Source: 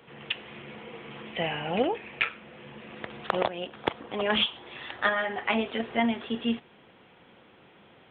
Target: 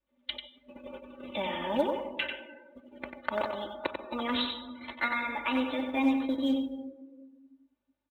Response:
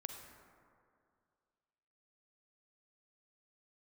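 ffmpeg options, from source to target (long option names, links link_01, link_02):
-filter_complex "[0:a]aemphasis=mode=reproduction:type=75fm,asplit=2[link_01][link_02];[link_02]adelay=170,highpass=300,lowpass=3400,asoftclip=type=hard:threshold=-16dB,volume=-16dB[link_03];[link_01][link_03]amix=inputs=2:normalize=0,asetrate=50951,aresample=44100,atempo=0.865537,aeval=exprs='val(0)+0.00141*(sin(2*PI*50*n/s)+sin(2*PI*2*50*n/s)/2+sin(2*PI*3*50*n/s)/3+sin(2*PI*4*50*n/s)/4+sin(2*PI*5*50*n/s)/5)':channel_layout=same,acompressor=threshold=-41dB:ratio=1.5,aecho=1:1:3.4:0.93,acrusher=bits=5:mode=log:mix=0:aa=0.000001,adynamicequalizer=threshold=0.00251:dfrequency=730:dqfactor=4.3:tfrequency=730:tqfactor=4.3:attack=5:release=100:ratio=0.375:range=2:mode=cutabove:tftype=bell,agate=range=-19dB:threshold=-39dB:ratio=16:detection=peak,asplit=2[link_04][link_05];[1:a]atrim=start_sample=2205,adelay=93[link_06];[link_05][link_06]afir=irnorm=-1:irlink=0,volume=-2dB[link_07];[link_04][link_07]amix=inputs=2:normalize=0,afftdn=noise_reduction=18:noise_floor=-47"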